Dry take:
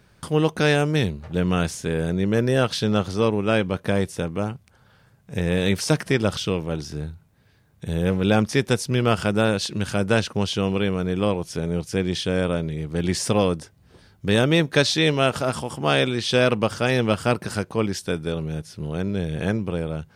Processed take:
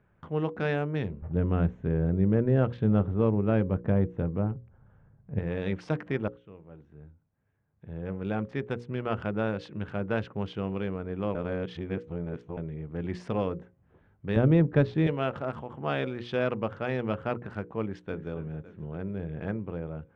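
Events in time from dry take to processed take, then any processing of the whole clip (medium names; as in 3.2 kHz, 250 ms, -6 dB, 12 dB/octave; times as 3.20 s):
1.22–5.39 s: tilt EQ -3 dB/octave
6.28–9.30 s: fade in, from -20 dB
11.35–12.57 s: reverse
14.36–15.07 s: tilt EQ -3.5 dB/octave
17.83–18.27 s: echo throw 280 ms, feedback 60%, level -12 dB
whole clip: local Wiener filter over 9 samples; low-pass 2.1 kHz 12 dB/octave; hum notches 60/120/180/240/300/360/420/480/540 Hz; trim -8.5 dB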